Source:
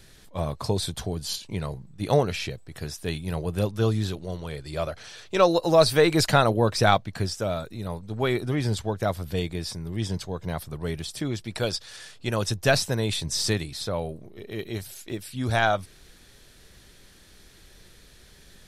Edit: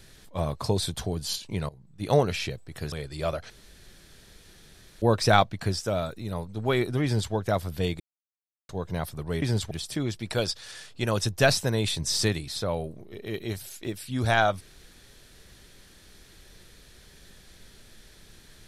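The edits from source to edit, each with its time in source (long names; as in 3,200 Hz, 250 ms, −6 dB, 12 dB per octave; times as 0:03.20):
0:01.69–0:02.19: fade in, from −20.5 dB
0:02.92–0:04.46: remove
0:05.04–0:06.56: fill with room tone
0:08.58–0:08.87: duplicate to 0:10.96
0:09.54–0:10.23: silence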